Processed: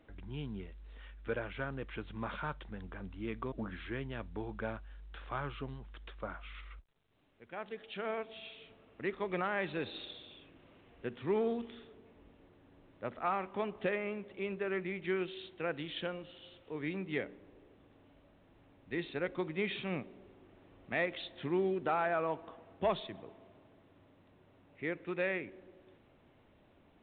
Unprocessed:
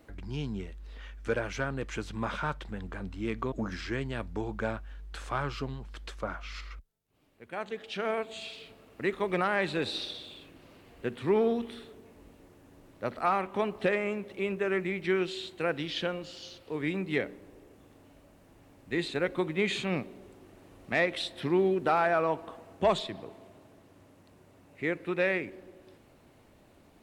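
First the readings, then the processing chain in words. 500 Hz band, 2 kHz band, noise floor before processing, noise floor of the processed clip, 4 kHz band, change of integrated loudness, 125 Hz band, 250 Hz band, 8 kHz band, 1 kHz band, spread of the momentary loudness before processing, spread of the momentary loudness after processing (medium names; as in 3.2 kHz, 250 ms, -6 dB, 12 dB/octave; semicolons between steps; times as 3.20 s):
-6.5 dB, -6.5 dB, -59 dBFS, -65 dBFS, -8.5 dB, -6.5 dB, -6.5 dB, -6.5 dB, under -25 dB, -6.5 dB, 17 LU, 17 LU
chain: trim -6.5 dB; µ-law 64 kbps 8 kHz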